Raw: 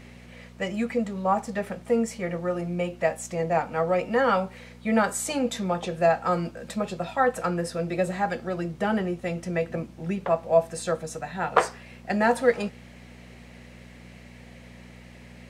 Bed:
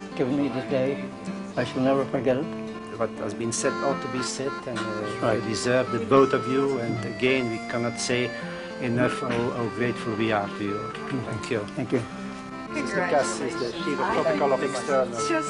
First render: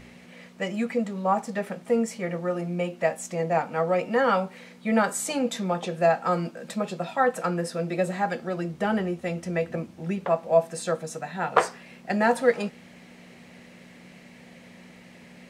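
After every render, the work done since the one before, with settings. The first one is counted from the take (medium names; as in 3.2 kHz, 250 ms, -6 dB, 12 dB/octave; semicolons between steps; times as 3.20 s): de-hum 60 Hz, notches 2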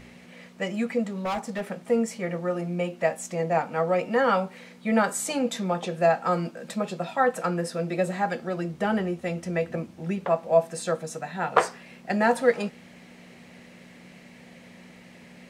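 1.14–1.71 s: hard clipper -25.5 dBFS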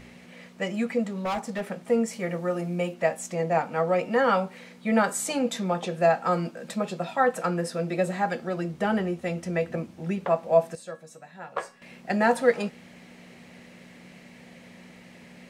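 2.13–2.94 s: treble shelf 8.2 kHz +8 dB; 10.75–11.82 s: feedback comb 560 Hz, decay 0.22 s, mix 80%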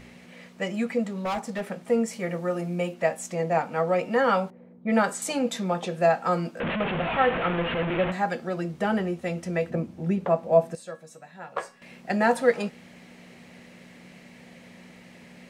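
4.50–5.22 s: level-controlled noise filter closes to 410 Hz, open at -19.5 dBFS; 6.60–8.12 s: one-bit delta coder 16 kbps, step -21.5 dBFS; 9.70–10.75 s: tilt shelf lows +4.5 dB, about 760 Hz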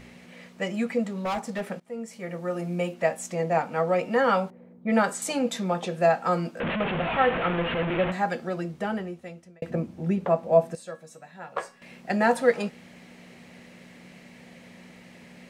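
1.80–2.73 s: fade in, from -21 dB; 8.45–9.62 s: fade out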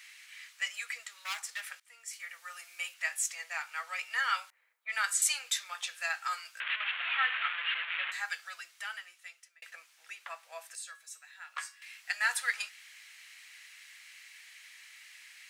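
high-pass 1.5 kHz 24 dB/octave; treble shelf 4.9 kHz +7.5 dB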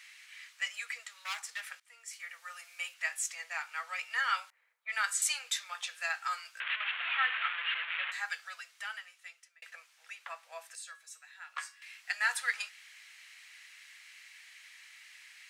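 elliptic high-pass 430 Hz, stop band 40 dB; treble shelf 11 kHz -6.5 dB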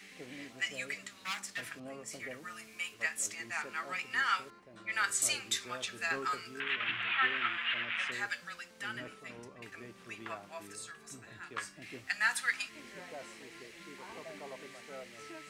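add bed -24.5 dB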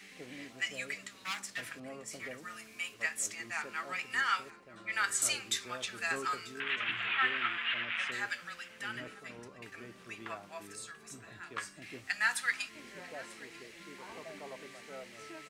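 delay 942 ms -20 dB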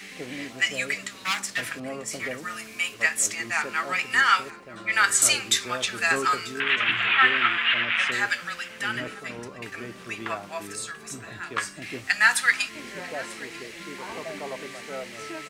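trim +11.5 dB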